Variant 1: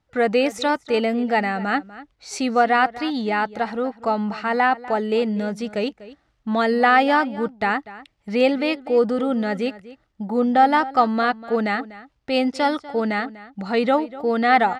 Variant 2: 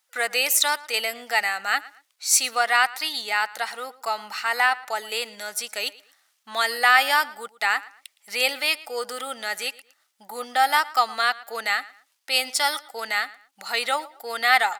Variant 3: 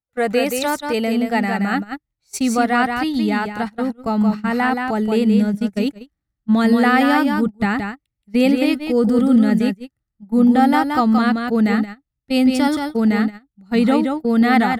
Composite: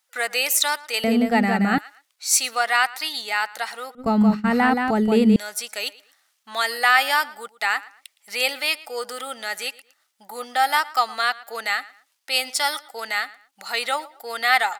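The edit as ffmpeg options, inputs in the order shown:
-filter_complex "[2:a]asplit=2[a][b];[1:a]asplit=3[c][d][e];[c]atrim=end=1.042[f];[a]atrim=start=1.038:end=1.782[g];[d]atrim=start=1.778:end=3.952[h];[b]atrim=start=3.948:end=5.362[i];[e]atrim=start=5.358[j];[f][g]acrossfade=d=0.004:c1=hsin:c2=hsin[k];[k][h]acrossfade=d=0.004:c1=hsin:c2=hsin[l];[l][i]acrossfade=d=0.004:c1=hsin:c2=hsin[m];[m][j]acrossfade=d=0.004:c1=hsin:c2=hsin"

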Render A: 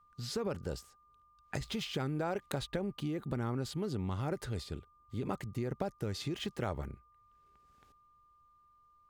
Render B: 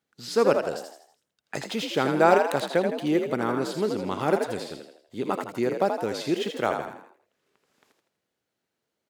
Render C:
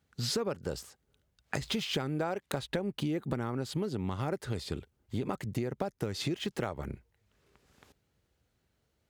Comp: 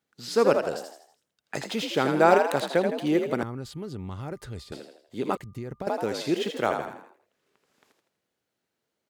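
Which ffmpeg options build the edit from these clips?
-filter_complex "[0:a]asplit=2[a][b];[1:a]asplit=3[c][d][e];[c]atrim=end=3.432[f];[a]atrim=start=3.428:end=4.722[g];[d]atrim=start=4.718:end=5.372[h];[b]atrim=start=5.368:end=5.872[i];[e]atrim=start=5.868[j];[f][g]acrossfade=d=0.004:c1=hsin:c2=hsin[k];[k][h]acrossfade=d=0.004:c1=hsin:c2=hsin[l];[l][i]acrossfade=d=0.004:c1=hsin:c2=hsin[m];[m][j]acrossfade=d=0.004:c1=hsin:c2=hsin"

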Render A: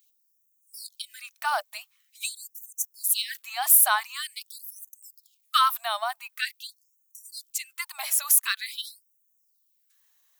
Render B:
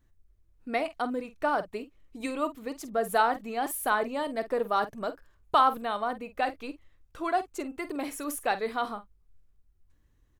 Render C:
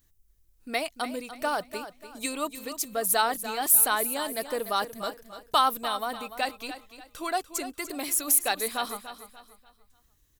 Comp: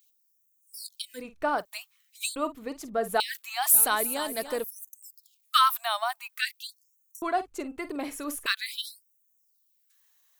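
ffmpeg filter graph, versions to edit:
-filter_complex "[1:a]asplit=3[a][b][c];[0:a]asplit=5[d][e][f][g][h];[d]atrim=end=1.24[i];[a]atrim=start=1.14:end=1.66[j];[e]atrim=start=1.56:end=2.362[k];[b]atrim=start=2.358:end=3.202[l];[f]atrim=start=3.198:end=3.702[m];[2:a]atrim=start=3.698:end=4.642[n];[g]atrim=start=4.638:end=7.222[o];[c]atrim=start=7.218:end=8.462[p];[h]atrim=start=8.458[q];[i][j]acrossfade=d=0.1:c1=tri:c2=tri[r];[r][k]acrossfade=d=0.1:c1=tri:c2=tri[s];[s][l]acrossfade=d=0.004:c1=hsin:c2=hsin[t];[t][m]acrossfade=d=0.004:c1=hsin:c2=hsin[u];[u][n]acrossfade=d=0.004:c1=hsin:c2=hsin[v];[v][o]acrossfade=d=0.004:c1=hsin:c2=hsin[w];[w][p]acrossfade=d=0.004:c1=hsin:c2=hsin[x];[x][q]acrossfade=d=0.004:c1=hsin:c2=hsin"

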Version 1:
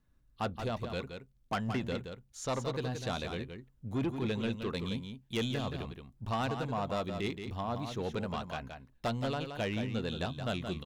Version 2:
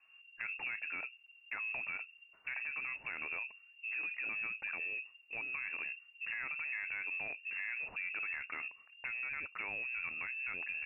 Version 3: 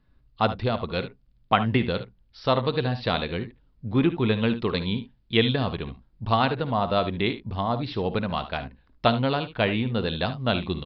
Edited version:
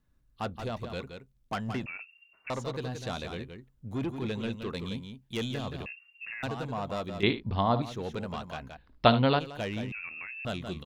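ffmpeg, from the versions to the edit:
-filter_complex "[1:a]asplit=3[a][b][c];[2:a]asplit=2[d][e];[0:a]asplit=6[f][g][h][i][j][k];[f]atrim=end=1.862[l];[a]atrim=start=1.858:end=2.502[m];[g]atrim=start=2.498:end=5.862[n];[b]atrim=start=5.858:end=6.432[o];[h]atrim=start=6.428:end=7.232[p];[d]atrim=start=7.228:end=7.822[q];[i]atrim=start=7.818:end=8.772[r];[e]atrim=start=8.768:end=9.392[s];[j]atrim=start=9.388:end=9.922[t];[c]atrim=start=9.918:end=10.452[u];[k]atrim=start=10.448[v];[l][m]acrossfade=d=0.004:c1=hsin:c2=hsin[w];[w][n]acrossfade=d=0.004:c1=hsin:c2=hsin[x];[x][o]acrossfade=d=0.004:c1=hsin:c2=hsin[y];[y][p]acrossfade=d=0.004:c1=hsin:c2=hsin[z];[z][q]acrossfade=d=0.004:c1=hsin:c2=hsin[aa];[aa][r]acrossfade=d=0.004:c1=hsin:c2=hsin[ab];[ab][s]acrossfade=d=0.004:c1=hsin:c2=hsin[ac];[ac][t]acrossfade=d=0.004:c1=hsin:c2=hsin[ad];[ad][u]acrossfade=d=0.004:c1=hsin:c2=hsin[ae];[ae][v]acrossfade=d=0.004:c1=hsin:c2=hsin"

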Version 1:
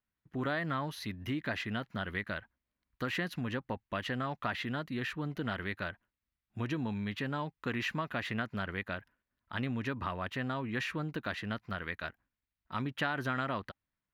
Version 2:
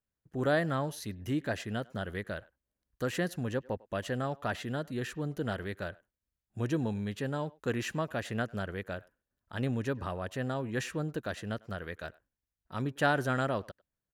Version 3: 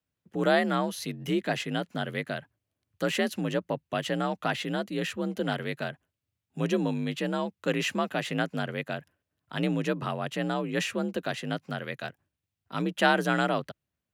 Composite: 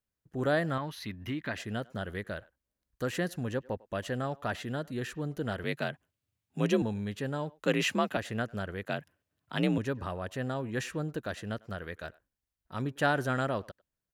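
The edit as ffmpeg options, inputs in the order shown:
-filter_complex "[2:a]asplit=3[a][b][c];[1:a]asplit=5[d][e][f][g][h];[d]atrim=end=0.782[i];[0:a]atrim=start=0.778:end=1.572[j];[e]atrim=start=1.568:end=5.642[k];[a]atrim=start=5.638:end=6.822[l];[f]atrim=start=6.818:end=7.632[m];[b]atrim=start=7.628:end=8.172[n];[g]atrim=start=8.168:end=8.852[o];[c]atrim=start=8.848:end=9.782[p];[h]atrim=start=9.778[q];[i][j]acrossfade=d=0.004:c1=hsin:c2=hsin[r];[r][k]acrossfade=d=0.004:c1=hsin:c2=hsin[s];[s][l]acrossfade=d=0.004:c1=hsin:c2=hsin[t];[t][m]acrossfade=d=0.004:c1=hsin:c2=hsin[u];[u][n]acrossfade=d=0.004:c1=hsin:c2=hsin[v];[v][o]acrossfade=d=0.004:c1=hsin:c2=hsin[w];[w][p]acrossfade=d=0.004:c1=hsin:c2=hsin[x];[x][q]acrossfade=d=0.004:c1=hsin:c2=hsin"

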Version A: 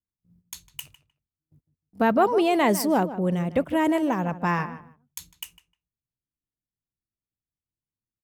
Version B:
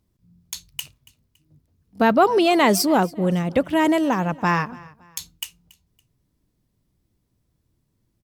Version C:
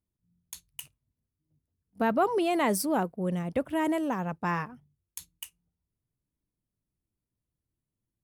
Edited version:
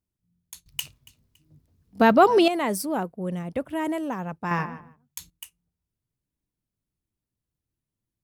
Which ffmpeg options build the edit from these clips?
-filter_complex "[2:a]asplit=3[a][b][c];[a]atrim=end=0.662[d];[1:a]atrim=start=0.658:end=2.482[e];[b]atrim=start=2.478:end=4.512[f];[0:a]atrim=start=4.508:end=5.302[g];[c]atrim=start=5.298[h];[d][e]acrossfade=d=0.004:c1=hsin:c2=hsin[i];[i][f]acrossfade=d=0.004:c1=hsin:c2=hsin[j];[j][g]acrossfade=d=0.004:c1=hsin:c2=hsin[k];[k][h]acrossfade=d=0.004:c1=hsin:c2=hsin"

